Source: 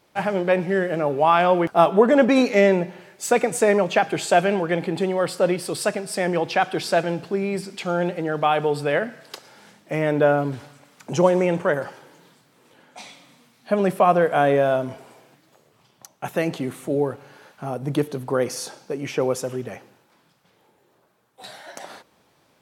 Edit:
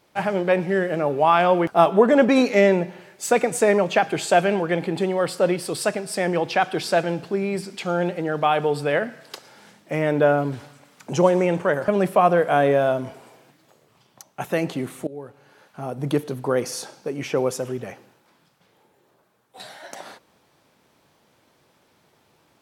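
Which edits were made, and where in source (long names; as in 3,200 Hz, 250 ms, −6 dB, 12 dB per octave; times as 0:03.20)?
0:11.88–0:13.72: remove
0:16.91–0:17.93: fade in, from −19.5 dB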